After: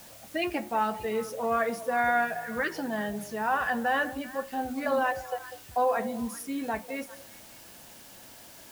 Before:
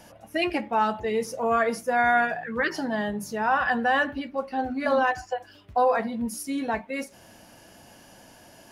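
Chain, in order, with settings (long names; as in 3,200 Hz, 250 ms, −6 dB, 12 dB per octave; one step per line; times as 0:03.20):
echo through a band-pass that steps 196 ms, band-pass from 530 Hz, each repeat 1.4 octaves, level −11.5 dB
background noise white −47 dBFS
dynamic equaliser 5,100 Hz, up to −3 dB, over −45 dBFS, Q 1.1
level −4 dB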